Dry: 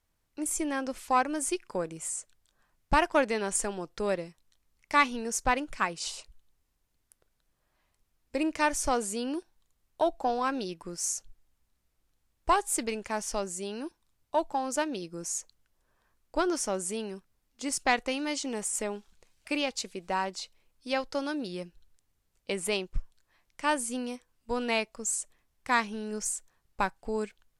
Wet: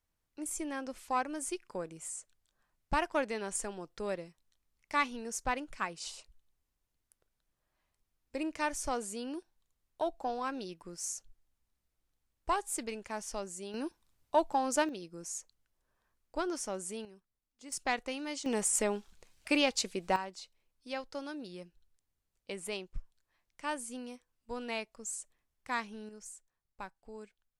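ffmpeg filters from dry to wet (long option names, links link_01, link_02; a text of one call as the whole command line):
ffmpeg -i in.wav -af "asetnsamples=nb_out_samples=441:pad=0,asendcmd='13.74 volume volume 0dB;14.89 volume volume -7dB;17.05 volume volume -16dB;17.72 volume volume -7dB;18.46 volume volume 2dB;20.16 volume volume -9dB;26.09 volume volume -16dB',volume=-7dB" out.wav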